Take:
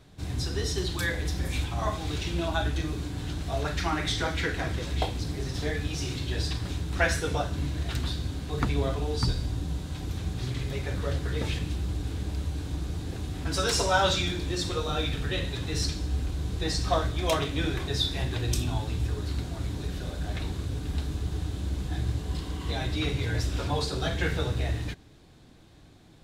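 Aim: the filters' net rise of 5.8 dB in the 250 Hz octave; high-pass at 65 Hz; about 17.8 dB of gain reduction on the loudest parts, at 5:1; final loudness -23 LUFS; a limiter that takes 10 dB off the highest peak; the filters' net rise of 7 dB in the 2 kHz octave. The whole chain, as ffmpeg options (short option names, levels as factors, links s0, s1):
-af "highpass=65,equalizer=f=250:t=o:g=8,equalizer=f=2000:t=o:g=9,acompressor=threshold=0.0158:ratio=5,volume=7.5,alimiter=limit=0.211:level=0:latency=1"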